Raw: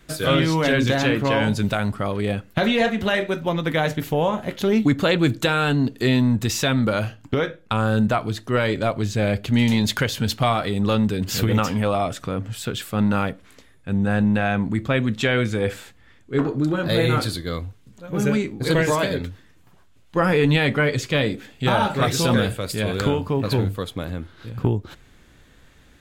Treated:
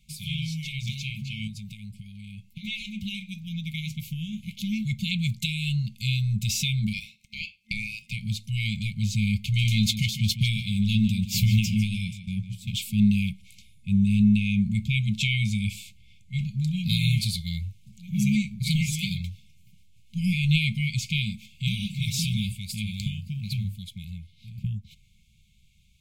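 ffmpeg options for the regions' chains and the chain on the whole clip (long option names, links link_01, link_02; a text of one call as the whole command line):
ffmpeg -i in.wav -filter_complex "[0:a]asettb=1/sr,asplit=3[link_01][link_02][link_03];[link_01]atrim=end=1.474[link_04];[link_02]atrim=start=1.47:end=2.65,asetpts=PTS-STARTPTS,afade=type=in:duration=0.004:curve=qsin,afade=type=out:start_time=1.176:duration=0.004:curve=qsin,acompressor=threshold=-25dB:ratio=12:attack=3.2:release=140:knee=1:detection=peak,asplit=2[link_05][link_06];[link_06]adelay=17,volume=-14dB[link_07];[link_05][link_07]amix=inputs=2:normalize=0,atrim=end_sample=52038[link_08];[link_03]atrim=start=2.646[link_09];[link_04][link_08]acrossfade=duration=0.004:curve1=hsin:curve2=qsin[link_10];[link_10][link_09]acrossfade=duration=0.004:curve1=qsin:curve2=hsin,asettb=1/sr,asplit=3[link_11][link_12][link_13];[link_11]atrim=end=6.934[link_14];[link_12]atrim=start=6.93:end=8.13,asetpts=PTS-STARTPTS,afade=type=in:duration=0.004:curve=qsin,afade=type=out:start_time=1.196:duration=0.004:curve=qsin,equalizer=frequency=490:width=0.41:gain=3.5,acompressor=mode=upward:threshold=-38dB:ratio=2.5:attack=3.2:release=140:knee=2.83:detection=peak,aeval=exprs='val(0)*sin(2*PI*1000*n/s)':channel_layout=same[link_15];[link_13]atrim=start=8.126[link_16];[link_14][link_15]acrossfade=duration=0.004:curve1=hsin:curve2=qsin[link_17];[link_17][link_16]acrossfade=duration=0.004:curve1=qsin:curve2=hsin,asettb=1/sr,asplit=3[link_18][link_19][link_20];[link_18]atrim=end=9.644[link_21];[link_19]atrim=start=9.64:end=12.73,asetpts=PTS-STARTPTS,afade=type=in:duration=0.004:curve=qsin,afade=type=out:start_time=3.086:duration=0.004:curve=qsin,agate=range=-33dB:threshold=-24dB:ratio=3:release=100:detection=peak,asplit=2[link_22][link_23];[link_23]adelay=17,volume=-12dB[link_24];[link_22][link_24]amix=inputs=2:normalize=0,atrim=end_sample=136269,asplit=2[link_25][link_26];[link_26]adelay=151,lowpass=frequency=4900:poles=1,volume=-11dB,asplit=2[link_27][link_28];[link_28]adelay=151,lowpass=frequency=4900:poles=1,volume=0.3,asplit=2[link_29][link_30];[link_30]adelay=151,lowpass=frequency=4900:poles=1,volume=0.3[link_31];[link_25][link_27][link_29][link_31]amix=inputs=4:normalize=0,atrim=end_sample=136269[link_32];[link_20]atrim=start=12.726[link_33];[link_21][link_32]acrossfade=duration=0.004:curve1=hsin:curve2=qsin[link_34];[link_34][link_33]acrossfade=duration=0.004:curve1=qsin:curve2=hsin,afftfilt=real='re*(1-between(b*sr/4096,220,2100))':imag='im*(1-between(b*sr/4096,220,2100))':win_size=4096:overlap=0.75,dynaudnorm=framelen=800:gausssize=13:maxgain=11.5dB,volume=-8dB" out.wav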